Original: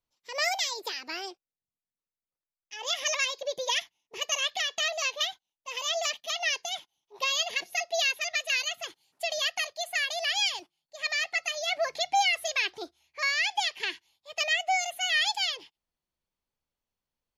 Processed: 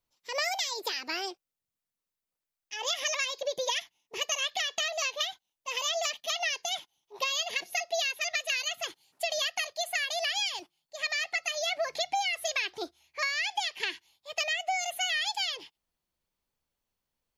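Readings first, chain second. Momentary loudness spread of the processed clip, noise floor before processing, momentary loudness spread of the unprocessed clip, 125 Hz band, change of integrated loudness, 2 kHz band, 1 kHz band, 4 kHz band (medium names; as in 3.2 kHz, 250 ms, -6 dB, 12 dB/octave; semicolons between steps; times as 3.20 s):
7 LU, under -85 dBFS, 13 LU, no reading, -2.0 dB, -2.5 dB, -2.5 dB, -2.0 dB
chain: treble shelf 12 kHz +3.5 dB; compression, threshold -30 dBFS, peak gain reduction 9.5 dB; trim +3 dB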